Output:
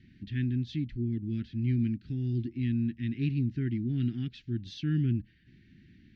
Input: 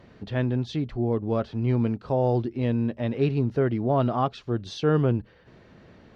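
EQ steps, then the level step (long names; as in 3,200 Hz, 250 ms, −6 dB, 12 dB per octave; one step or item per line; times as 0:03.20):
inverse Chebyshev band-stop filter 470–1,200 Hz, stop band 40 dB
high-frequency loss of the air 120 metres
−3.5 dB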